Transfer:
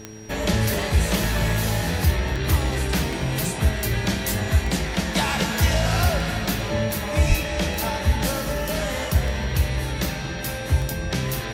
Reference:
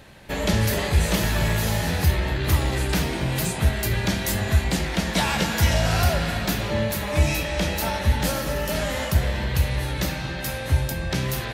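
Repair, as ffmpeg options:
ffmpeg -i in.wav -filter_complex "[0:a]adeclick=threshold=4,bandreject=frequency=108:width_type=h:width=4,bandreject=frequency=216:width_type=h:width=4,bandreject=frequency=324:width_type=h:width=4,bandreject=frequency=432:width_type=h:width=4,bandreject=frequency=5700:width=30,asplit=3[link_01][link_02][link_03];[link_01]afade=type=out:start_time=7.28:duration=0.02[link_04];[link_02]highpass=frequency=140:width=0.5412,highpass=frequency=140:width=1.3066,afade=type=in:start_time=7.28:duration=0.02,afade=type=out:start_time=7.4:duration=0.02[link_05];[link_03]afade=type=in:start_time=7.4:duration=0.02[link_06];[link_04][link_05][link_06]amix=inputs=3:normalize=0" out.wav

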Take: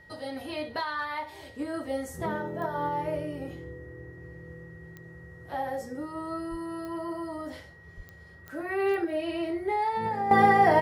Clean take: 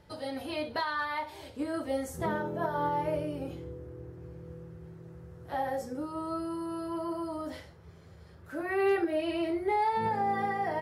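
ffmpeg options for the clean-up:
ffmpeg -i in.wav -filter_complex "[0:a]adeclick=threshold=4,bandreject=frequency=1900:width=30,asplit=3[link_01][link_02][link_03];[link_01]afade=type=out:start_time=6.5:duration=0.02[link_04];[link_02]highpass=frequency=140:width=0.5412,highpass=frequency=140:width=1.3066,afade=type=in:start_time=6.5:duration=0.02,afade=type=out:start_time=6.62:duration=0.02[link_05];[link_03]afade=type=in:start_time=6.62:duration=0.02[link_06];[link_04][link_05][link_06]amix=inputs=3:normalize=0,asplit=3[link_07][link_08][link_09];[link_07]afade=type=out:start_time=7.96:duration=0.02[link_10];[link_08]highpass=frequency=140:width=0.5412,highpass=frequency=140:width=1.3066,afade=type=in:start_time=7.96:duration=0.02,afade=type=out:start_time=8.08:duration=0.02[link_11];[link_09]afade=type=in:start_time=8.08:duration=0.02[link_12];[link_10][link_11][link_12]amix=inputs=3:normalize=0,asetnsamples=nb_out_samples=441:pad=0,asendcmd='10.31 volume volume -12dB',volume=0dB" out.wav

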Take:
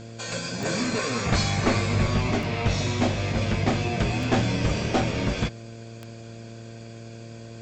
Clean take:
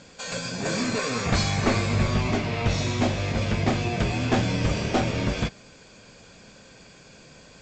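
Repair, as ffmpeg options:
ffmpeg -i in.wav -af "adeclick=threshold=4,bandreject=frequency=114.2:width_type=h:width=4,bandreject=frequency=228.4:width_type=h:width=4,bandreject=frequency=342.6:width_type=h:width=4,bandreject=frequency=456.8:width_type=h:width=4,bandreject=frequency=571:width_type=h:width=4,bandreject=frequency=685.2:width_type=h:width=4" out.wav

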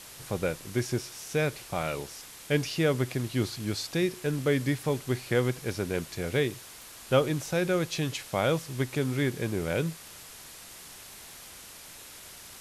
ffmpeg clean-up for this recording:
ffmpeg -i in.wav -af "adeclick=threshold=4,afwtdn=0.0056" out.wav

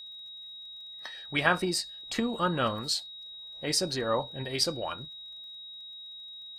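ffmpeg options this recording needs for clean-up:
ffmpeg -i in.wav -af "adeclick=threshold=4,bandreject=frequency=3800:width=30" out.wav

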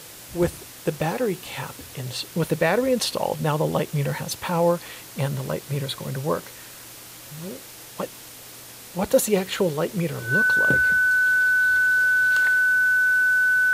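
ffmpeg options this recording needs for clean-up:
ffmpeg -i in.wav -af "bandreject=frequency=1500:width=30,afwtdn=0.0089" out.wav

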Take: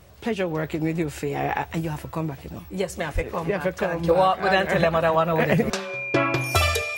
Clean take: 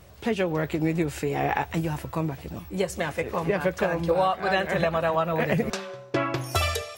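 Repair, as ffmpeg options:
ffmpeg -i in.wav -filter_complex "[0:a]bandreject=frequency=2400:width=30,asplit=3[link_01][link_02][link_03];[link_01]afade=type=out:start_time=3.14:duration=0.02[link_04];[link_02]highpass=frequency=140:width=0.5412,highpass=frequency=140:width=1.3066,afade=type=in:start_time=3.14:duration=0.02,afade=type=out:start_time=3.26:duration=0.02[link_05];[link_03]afade=type=in:start_time=3.26:duration=0.02[link_06];[link_04][link_05][link_06]amix=inputs=3:normalize=0,asetnsamples=nb_out_samples=441:pad=0,asendcmd='4.04 volume volume -4dB',volume=0dB" out.wav

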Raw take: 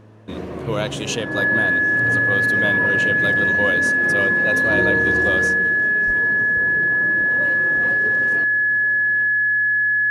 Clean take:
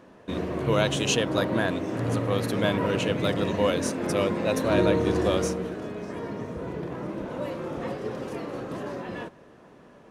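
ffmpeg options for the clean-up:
ffmpeg -i in.wav -filter_complex "[0:a]bandreject=frequency=108.3:width_type=h:width=4,bandreject=frequency=216.6:width_type=h:width=4,bandreject=frequency=324.9:width_type=h:width=4,bandreject=frequency=433.2:width_type=h:width=4,bandreject=frequency=1700:width=30,asplit=3[link_01][link_02][link_03];[link_01]afade=type=out:start_time=6.06:duration=0.02[link_04];[link_02]highpass=frequency=140:width=0.5412,highpass=frequency=140:width=1.3066,afade=type=in:start_time=6.06:duration=0.02,afade=type=out:start_time=6.18:duration=0.02[link_05];[link_03]afade=type=in:start_time=6.18:duration=0.02[link_06];[link_04][link_05][link_06]amix=inputs=3:normalize=0,asetnsamples=nb_out_samples=441:pad=0,asendcmd='8.44 volume volume 11.5dB',volume=0dB" out.wav

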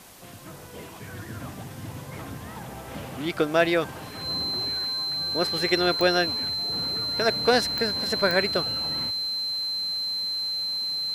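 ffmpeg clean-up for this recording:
ffmpeg -i in.wav -af "adeclick=threshold=4,bandreject=frequency=4100:width=30,afwtdn=0.0035" out.wav

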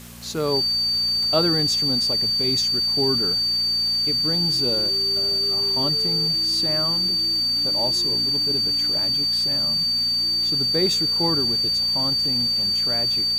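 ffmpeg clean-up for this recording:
ffmpeg -i in.wav -af "adeclick=threshold=4,bandreject=frequency=58.8:width_type=h:width=4,bandreject=frequency=117.6:width_type=h:width=4,bandreject=frequency=176.4:width_type=h:width=4,bandreject=frequency=235.2:width_type=h:width=4,bandreject=frequency=4600:width=30,afwtdn=0.0071" out.wav

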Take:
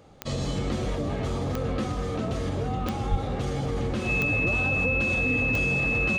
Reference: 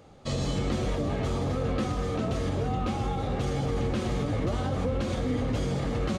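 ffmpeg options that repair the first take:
ffmpeg -i in.wav -filter_complex "[0:a]adeclick=threshold=4,bandreject=frequency=2600:width=30,asplit=3[link_01][link_02][link_03];[link_01]afade=type=out:start_time=3.1:duration=0.02[link_04];[link_02]highpass=frequency=140:width=0.5412,highpass=frequency=140:width=1.3066,afade=type=in:start_time=3.1:duration=0.02,afade=type=out:start_time=3.22:duration=0.02[link_05];[link_03]afade=type=in:start_time=3.22:duration=0.02[link_06];[link_04][link_05][link_06]amix=inputs=3:normalize=0" out.wav

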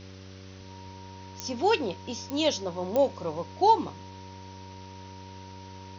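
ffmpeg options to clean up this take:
ffmpeg -i in.wav -af "adeclick=threshold=4,bandreject=frequency=94.7:width_type=h:width=4,bandreject=frequency=189.4:width_type=h:width=4,bandreject=frequency=284.1:width_type=h:width=4,bandreject=frequency=378.8:width_type=h:width=4,bandreject=frequency=473.5:width_type=h:width=4,bandreject=frequency=568.2:width_type=h:width=4,bandreject=frequency=940:width=30,afwtdn=0.0035" out.wav

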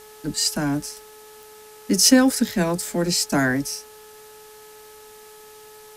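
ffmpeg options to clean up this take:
ffmpeg -i in.wav -af "adeclick=threshold=4,bandreject=frequency=428.1:width_type=h:width=4,bandreject=frequency=856.2:width_type=h:width=4,bandreject=frequency=1284.3:width_type=h:width=4,bandreject=frequency=1712.4:width_type=h:width=4,afwtdn=0.004" out.wav

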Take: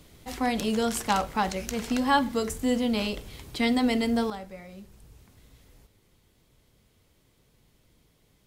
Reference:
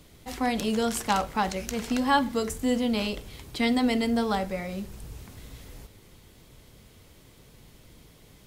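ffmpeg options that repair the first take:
ffmpeg -i in.wav -af "asetnsamples=nb_out_samples=441:pad=0,asendcmd='4.3 volume volume 11dB',volume=0dB" out.wav

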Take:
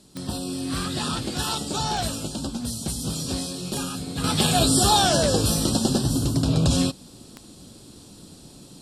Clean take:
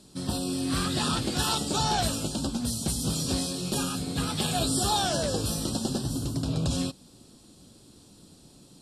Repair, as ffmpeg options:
ffmpeg -i in.wav -af "adeclick=threshold=4,agate=range=-21dB:threshold=-38dB,asetnsamples=nb_out_samples=441:pad=0,asendcmd='4.24 volume volume -7.5dB',volume=0dB" out.wav

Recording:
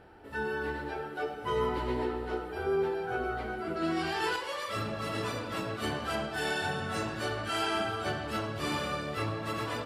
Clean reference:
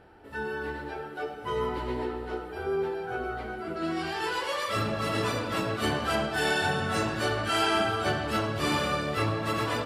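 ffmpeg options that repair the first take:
ffmpeg -i in.wav -af "asetnsamples=nb_out_samples=441:pad=0,asendcmd='4.36 volume volume 5.5dB',volume=0dB" out.wav

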